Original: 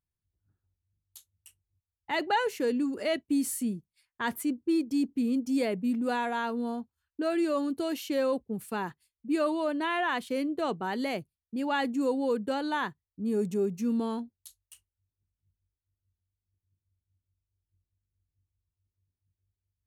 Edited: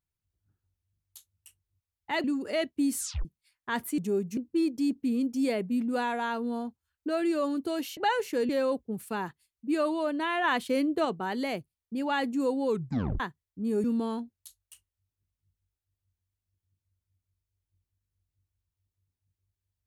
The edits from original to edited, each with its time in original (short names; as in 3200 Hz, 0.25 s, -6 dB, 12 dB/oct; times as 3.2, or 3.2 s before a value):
2.24–2.76 move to 8.1
3.5 tape stop 0.27 s
10.05–10.66 gain +3.5 dB
12.3 tape stop 0.51 s
13.45–13.84 move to 4.5